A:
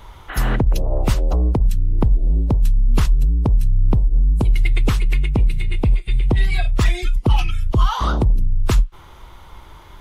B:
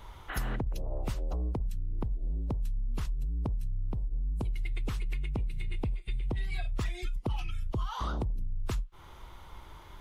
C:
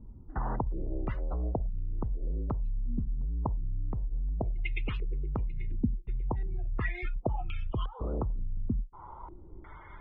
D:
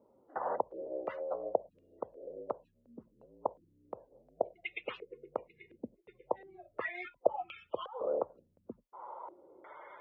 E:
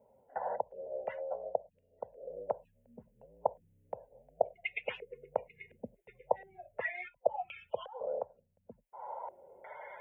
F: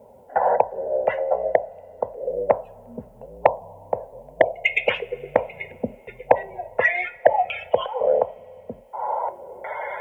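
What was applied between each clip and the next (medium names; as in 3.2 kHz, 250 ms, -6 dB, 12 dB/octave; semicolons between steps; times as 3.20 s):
compression 6:1, threshold -22 dBFS, peak gain reduction 12 dB; trim -7.5 dB
loudest bins only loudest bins 64; step-sequenced low-pass 2.8 Hz 240–2700 Hz
resonant high-pass 540 Hz, resonance Q 4.9; trim -2.5 dB
gain riding within 4 dB 0.5 s; static phaser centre 1.2 kHz, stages 6; trim +2.5 dB
two-slope reverb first 0.32 s, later 3.4 s, from -21 dB, DRR 11.5 dB; sine folder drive 6 dB, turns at -11 dBFS; trim +7.5 dB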